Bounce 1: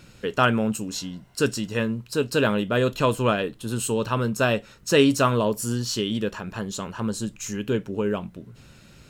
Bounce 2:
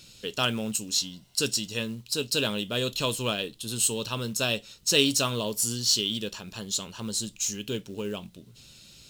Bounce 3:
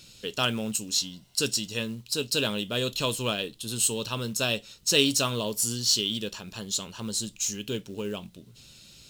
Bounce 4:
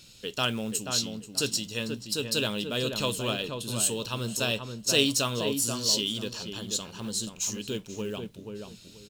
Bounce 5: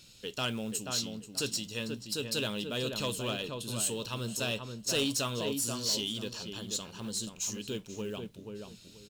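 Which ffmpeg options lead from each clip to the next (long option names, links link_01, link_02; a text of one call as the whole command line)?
ffmpeg -i in.wav -af "highshelf=frequency=2500:width_type=q:width=1.5:gain=12.5,acrusher=bits=6:mode=log:mix=0:aa=0.000001,volume=-8dB" out.wav
ffmpeg -i in.wav -af anull out.wav
ffmpeg -i in.wav -filter_complex "[0:a]asplit=2[link_01][link_02];[link_02]adelay=483,lowpass=frequency=1500:poles=1,volume=-5dB,asplit=2[link_03][link_04];[link_04]adelay=483,lowpass=frequency=1500:poles=1,volume=0.24,asplit=2[link_05][link_06];[link_06]adelay=483,lowpass=frequency=1500:poles=1,volume=0.24[link_07];[link_01][link_03][link_05][link_07]amix=inputs=4:normalize=0,volume=-1.5dB" out.wav
ffmpeg -i in.wav -af "asoftclip=type=tanh:threshold=-19.5dB,volume=-3.5dB" out.wav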